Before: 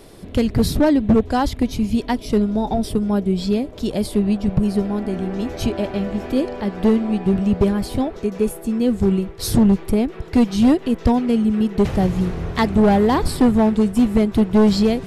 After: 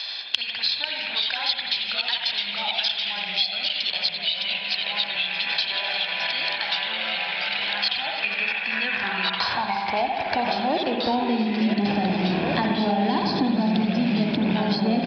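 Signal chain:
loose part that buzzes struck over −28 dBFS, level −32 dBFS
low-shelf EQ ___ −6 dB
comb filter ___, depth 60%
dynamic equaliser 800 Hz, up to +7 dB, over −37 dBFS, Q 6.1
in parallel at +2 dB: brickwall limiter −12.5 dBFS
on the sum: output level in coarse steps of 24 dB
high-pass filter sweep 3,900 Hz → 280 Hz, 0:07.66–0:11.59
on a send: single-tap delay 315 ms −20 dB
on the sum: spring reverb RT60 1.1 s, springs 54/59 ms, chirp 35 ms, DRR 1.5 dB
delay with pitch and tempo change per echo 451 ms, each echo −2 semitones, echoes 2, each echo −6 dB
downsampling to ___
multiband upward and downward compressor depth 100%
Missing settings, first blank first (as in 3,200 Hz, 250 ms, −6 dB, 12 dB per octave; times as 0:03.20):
60 Hz, 1.2 ms, 11,025 Hz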